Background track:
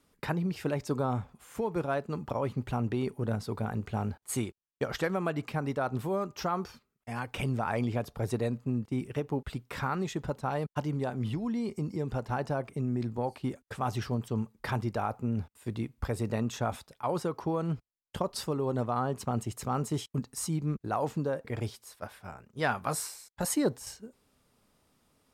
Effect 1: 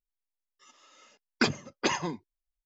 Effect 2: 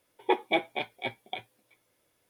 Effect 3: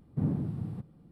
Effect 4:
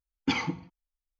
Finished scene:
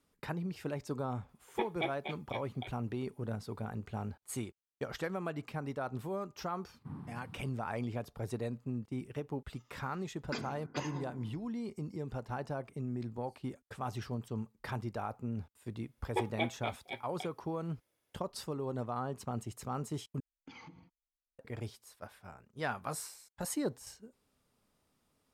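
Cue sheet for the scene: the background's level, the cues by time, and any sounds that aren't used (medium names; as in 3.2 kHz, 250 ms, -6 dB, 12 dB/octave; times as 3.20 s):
background track -7 dB
1.29 s: add 2 -9.5 dB
6.68 s: add 3 -7.5 dB + resonant low shelf 770 Hz -8 dB, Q 3
8.91 s: add 1 -14.5 dB + FDN reverb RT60 1.1 s, low-frequency decay 1.45×, high-frequency decay 0.3×, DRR 5.5 dB
15.87 s: add 2 -8.5 dB
20.20 s: replace with 4 -11.5 dB + compression 8:1, threshold -37 dBFS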